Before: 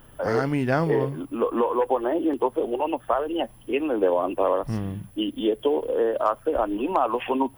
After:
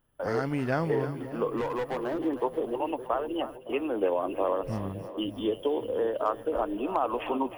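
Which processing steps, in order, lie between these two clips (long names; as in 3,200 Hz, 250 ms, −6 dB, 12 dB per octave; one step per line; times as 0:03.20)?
0:01.57–0:02.19: hard clipping −22 dBFS, distortion −17 dB
noise gate −38 dBFS, range −17 dB
echo with a time of its own for lows and highs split 580 Hz, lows 562 ms, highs 312 ms, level −12 dB
level −5.5 dB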